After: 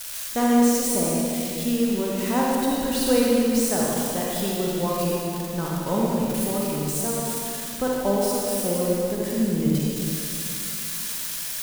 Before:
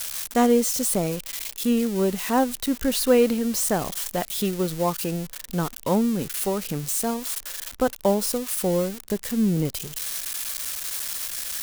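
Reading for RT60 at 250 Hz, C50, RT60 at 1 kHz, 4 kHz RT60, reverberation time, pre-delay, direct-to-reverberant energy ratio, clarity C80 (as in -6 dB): 3.0 s, -3.5 dB, 2.5 s, 2.2 s, 2.7 s, 37 ms, -4.5 dB, -1.5 dB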